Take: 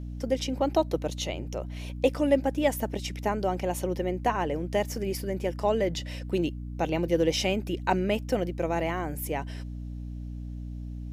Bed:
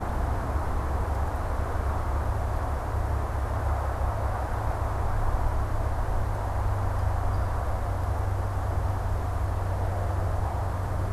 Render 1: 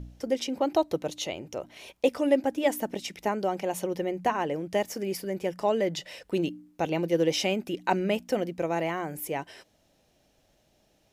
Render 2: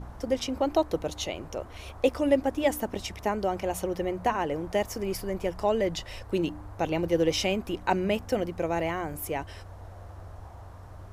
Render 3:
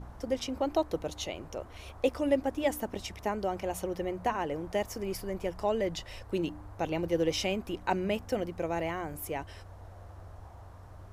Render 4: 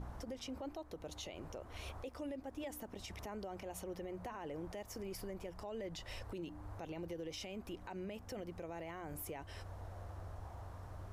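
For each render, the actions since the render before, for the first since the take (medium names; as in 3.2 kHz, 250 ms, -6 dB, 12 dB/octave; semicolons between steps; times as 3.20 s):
de-hum 60 Hz, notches 5
add bed -16.5 dB
trim -4 dB
compression 2.5:1, threshold -42 dBFS, peak gain reduction 14 dB; peak limiter -36.5 dBFS, peak gain reduction 11.5 dB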